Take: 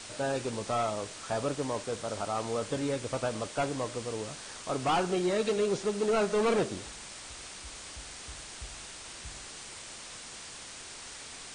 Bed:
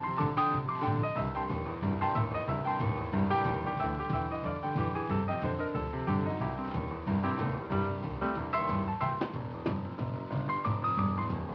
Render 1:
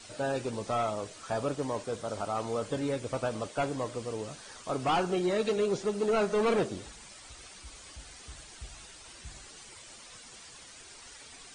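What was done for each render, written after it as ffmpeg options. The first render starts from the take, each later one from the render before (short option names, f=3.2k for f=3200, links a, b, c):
-af "afftdn=nr=10:nf=-46"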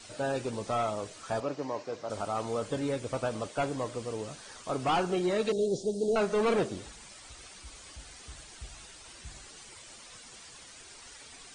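-filter_complex "[0:a]asettb=1/sr,asplit=3[a][b][c];[a]atrim=end=1.404[d];[b]atrim=start=1.4:end=2.1,asetpts=PTS-STARTPTS,afade=t=in:d=0.004:c=qsin,afade=t=out:st=0.696:d=0.004:c=qsin,highpass=180,equalizer=f=210:t=q:w=4:g=-7,equalizer=f=440:t=q:w=4:g=-3,equalizer=f=1.4k:t=q:w=4:g=-4,equalizer=f=3.4k:t=q:w=4:g=-8,lowpass=f=5.8k:w=0.5412,lowpass=f=5.8k:w=1.3066[e];[c]atrim=start=2.096[f];[d][e]acrossfade=d=0.004:c1=hsin:c2=qsin[g];[g][f]acrossfade=d=0.004:c1=qsin:c2=hsin,asettb=1/sr,asplit=3[h][i][j];[h]atrim=end=5.524[k];[i]atrim=start=5.52:end=6.16,asetpts=PTS-STARTPTS,afade=t=in:d=0.004:c=qsin,afade=t=out:st=0.636:d=0.004:c=qsin,asuperstop=centerf=1600:order=8:qfactor=0.53[l];[j]atrim=start=6.156[m];[k][l]acrossfade=d=0.004:c1=hsin:c2=qsin[n];[n][m]acrossfade=d=0.004:c1=qsin:c2=hsin"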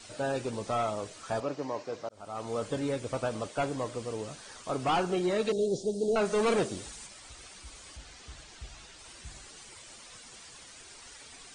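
-filter_complex "[0:a]asettb=1/sr,asplit=3[a][b][c];[a]atrim=end=6.254[d];[b]atrim=start=6.25:end=7.07,asetpts=PTS-STARTPTS,afade=t=in:d=0.004:c=qsin,afade=t=out:st=0.816:d=0.004:c=qsin,highshelf=f=5.1k:g=8.5[e];[c]atrim=start=7.066[f];[d][e]acrossfade=d=0.004:c1=hsin:c2=qsin[g];[g][f]acrossfade=d=0.004:c1=qsin:c2=hsin,asettb=1/sr,asplit=3[h][i][j];[h]atrim=end=7.974[k];[i]atrim=start=7.97:end=8.99,asetpts=PTS-STARTPTS,afade=t=in:d=0.004:c=qsin,afade=t=out:st=1.016:d=0.004:c=qsin,lowpass=7.1k[l];[j]atrim=start=8.986[m];[k][l]acrossfade=d=0.004:c1=hsin:c2=qsin[n];[n][m]acrossfade=d=0.004:c1=qsin:c2=hsin,asplit=2[o][p];[o]atrim=end=2.09,asetpts=PTS-STARTPTS,afade=t=out:st=2.086:d=0.004:c=hsin[q];[p]atrim=start=2.09,asetpts=PTS-STARTPTS,afade=t=in:d=0.51[r];[q][r]concat=n=2:v=0:a=1"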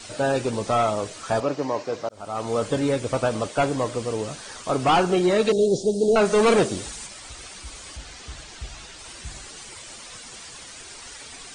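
-af "volume=9dB"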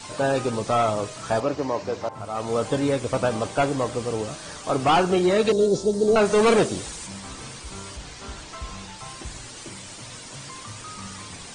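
-filter_complex "[1:a]volume=-10dB[a];[0:a][a]amix=inputs=2:normalize=0"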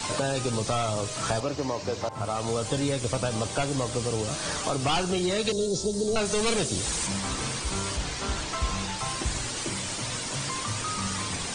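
-filter_complex "[0:a]asplit=2[a][b];[b]alimiter=limit=-20.5dB:level=0:latency=1:release=250,volume=2.5dB[c];[a][c]amix=inputs=2:normalize=0,acrossover=split=120|3000[d][e][f];[e]acompressor=threshold=-28dB:ratio=4[g];[d][g][f]amix=inputs=3:normalize=0"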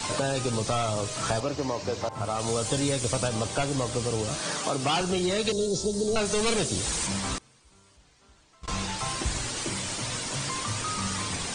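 -filter_complex "[0:a]asettb=1/sr,asplit=3[a][b][c];[a]atrim=end=2.394[d];[b]atrim=start=2.39:end=3.28,asetpts=PTS-STARTPTS,afade=t=in:d=0.004:c=qsin,afade=t=out:st=0.886:d=0.004:c=qsin,highshelf=f=5.4k:g=7[e];[c]atrim=start=3.276[f];[d][e]acrossfade=d=0.004:c1=hsin:c2=qsin[g];[g][f]acrossfade=d=0.004:c1=qsin:c2=hsin,asettb=1/sr,asplit=3[h][i][j];[h]atrim=end=4.404[k];[i]atrim=start=4.4:end=5.01,asetpts=PTS-STARTPTS,afade=t=in:d=0.004:c=qsin,afade=t=out:st=0.606:d=0.004:c=qsin,highpass=f=130:w=0.5412,highpass=f=130:w=1.3066[l];[j]atrim=start=5.006[m];[k][l]acrossfade=d=0.004:c1=hsin:c2=qsin[n];[n][m]acrossfade=d=0.004:c1=qsin:c2=hsin,asettb=1/sr,asplit=3[o][p][q];[o]atrim=end=7.384[r];[p]atrim=start=7.38:end=8.68,asetpts=PTS-STARTPTS,afade=t=in:d=0.004:c=qsin,afade=t=out:st=1.296:d=0.004:c=qsin,agate=range=-28dB:threshold=-22dB:ratio=16:release=100:detection=peak[s];[q]atrim=start=8.676[t];[r][s]acrossfade=d=0.004:c1=hsin:c2=qsin[u];[u][t]acrossfade=d=0.004:c1=qsin:c2=hsin"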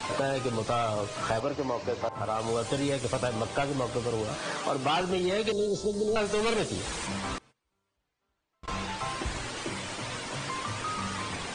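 -af "agate=range=-19dB:threshold=-47dB:ratio=16:detection=peak,bass=f=250:g=-5,treble=f=4k:g=-11"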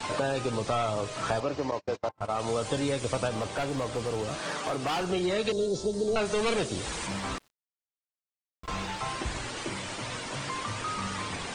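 -filter_complex "[0:a]asettb=1/sr,asplit=3[a][b][c];[a]atrim=end=1.714[d];[b]atrim=start=1.71:end=2.32,asetpts=PTS-STARTPTS,afade=t=in:d=0.004:c=qsin,afade=t=out:st=0.606:d=0.004:c=qsin,agate=range=-39dB:threshold=-34dB:ratio=16:release=100:detection=peak[e];[c]atrim=start=2.316[f];[d][e]acrossfade=d=0.004:c1=hsin:c2=qsin[g];[g][f]acrossfade=d=0.004:c1=qsin:c2=hsin,asettb=1/sr,asplit=3[h][i][j];[h]atrim=end=3.314[k];[i]atrim=start=3.31:end=5.07,asetpts=PTS-STARTPTS,afade=t=in:d=0.004:c=qsin,afade=t=out:st=1.756:d=0.004:c=qsin,asoftclip=type=hard:threshold=-25.5dB[l];[j]atrim=start=5.066[m];[k][l]acrossfade=d=0.004:c1=hsin:c2=qsin[n];[n][m]acrossfade=d=0.004:c1=qsin:c2=hsin,asettb=1/sr,asplit=3[o][p][q];[o]atrim=end=7.084[r];[p]atrim=start=7.08:end=8.99,asetpts=PTS-STARTPTS,afade=t=in:d=0.004:c=qsin,afade=t=out:st=1.906:d=0.004:c=qsin,aeval=exprs='val(0)*gte(abs(val(0)),0.00178)':c=same[s];[q]atrim=start=8.986[t];[r][s]acrossfade=d=0.004:c1=hsin:c2=qsin[u];[u][t]acrossfade=d=0.004:c1=qsin:c2=hsin"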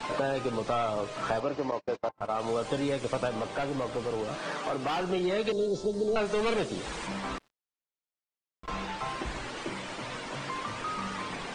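-af "lowpass=f=3.1k:p=1,equalizer=f=90:t=o:w=0.58:g=-14.5"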